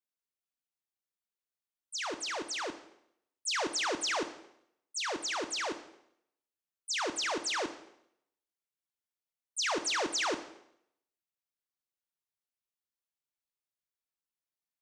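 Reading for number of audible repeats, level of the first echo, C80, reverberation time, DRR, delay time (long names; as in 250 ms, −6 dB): no echo audible, no echo audible, 14.5 dB, 0.75 s, 8.5 dB, no echo audible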